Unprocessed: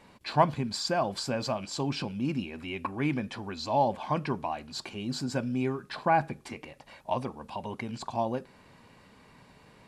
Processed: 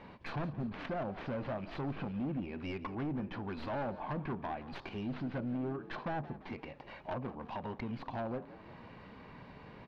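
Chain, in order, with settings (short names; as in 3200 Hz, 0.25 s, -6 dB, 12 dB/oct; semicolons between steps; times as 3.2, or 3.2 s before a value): tracing distortion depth 0.47 ms; treble ducked by the level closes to 760 Hz, closed at -23.5 dBFS; compressor 1.5:1, threshold -52 dBFS, peak gain reduction 12.5 dB; hard clip -38 dBFS, distortion -8 dB; air absorption 290 m; on a send: frequency-shifting echo 0.171 s, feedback 52%, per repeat +50 Hz, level -16 dB; on the sum: ending taper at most 290 dB/s; gain +5.5 dB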